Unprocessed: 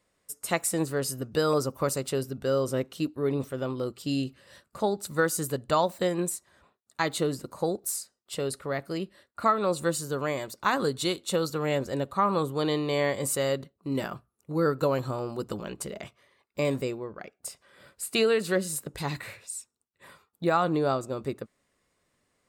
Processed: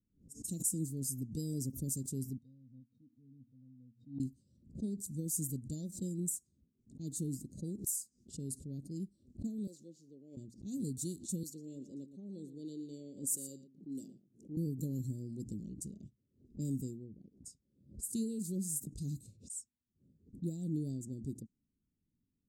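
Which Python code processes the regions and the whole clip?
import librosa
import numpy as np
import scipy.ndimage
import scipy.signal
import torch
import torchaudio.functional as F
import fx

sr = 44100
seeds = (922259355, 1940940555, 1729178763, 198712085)

y = fx.chain(x, sr, fx.highpass(hz=120.0, slope=12),
    fx.low_shelf_res(hz=760.0, db=-11.5, q=1.5),
    fx.octave_resonator(note='A#', decay_s=0.1), at=(2.38, 4.2))
y = fx.chain(y, sr, fx.median_filter(points=5),
    fx.highpass(hz=560.0, slope=12), at=(9.67, 10.37))
y = fx.chain(y, sr, fx.highpass(hz=360.0, slope=12),
    fx.echo_single(ms=116, db=-12.5), at=(11.43, 14.57))
y = scipy.signal.sosfilt(scipy.signal.ellip(3, 1.0, 70, [260.0, 6700.0], 'bandstop', fs=sr, output='sos'), y)
y = fx.env_lowpass(y, sr, base_hz=960.0, full_db=-33.0)
y = fx.pre_swell(y, sr, db_per_s=150.0)
y = F.gain(torch.from_numpy(y), -3.5).numpy()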